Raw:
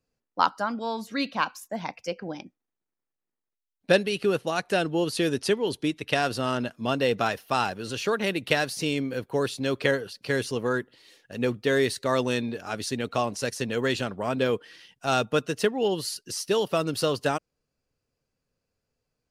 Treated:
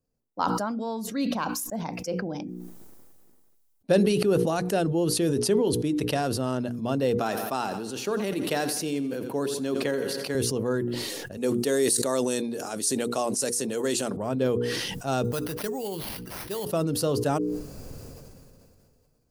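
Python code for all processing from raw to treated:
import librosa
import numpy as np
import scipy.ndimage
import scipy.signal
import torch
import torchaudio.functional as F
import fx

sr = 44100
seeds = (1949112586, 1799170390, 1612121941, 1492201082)

y = fx.chain(x, sr, fx.highpass(hz=220.0, slope=12),
    fx.peak_eq(hz=530.0, db=-4.5, octaves=0.35),
    fx.echo_feedback(ms=85, feedback_pct=54, wet_db=-15.5), at=(7.16, 10.35))
y = fx.chain(y, sr, fx.highpass(hz=240.0, slope=12),
    fx.peak_eq(hz=8700.0, db=14.5, octaves=1.3), at=(11.37, 14.17))
y = fx.chain(y, sr, fx.peak_eq(hz=280.0, db=-10.5, octaves=2.9),
    fx.sample_hold(seeds[0], rate_hz=7500.0, jitter_pct=0), at=(15.24, 16.66))
y = fx.peak_eq(y, sr, hz=2400.0, db=-13.5, octaves=2.8)
y = fx.hum_notches(y, sr, base_hz=60, count=8)
y = fx.sustainer(y, sr, db_per_s=24.0)
y = y * 10.0 ** (2.5 / 20.0)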